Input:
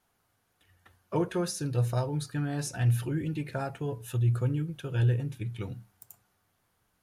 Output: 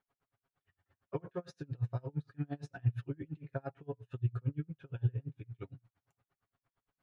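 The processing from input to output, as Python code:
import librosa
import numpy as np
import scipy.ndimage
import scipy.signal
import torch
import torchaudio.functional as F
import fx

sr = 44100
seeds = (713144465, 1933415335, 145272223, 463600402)

y = scipy.signal.sosfilt(scipy.signal.butter(2, 2600.0, 'lowpass', fs=sr, output='sos'), x)
y = y + 0.65 * np.pad(y, (int(7.3 * sr / 1000.0), 0))[:len(y)]
y = y * 10.0 ** (-34 * (0.5 - 0.5 * np.cos(2.0 * np.pi * 8.7 * np.arange(len(y)) / sr)) / 20.0)
y = F.gain(torch.from_numpy(y), -5.5).numpy()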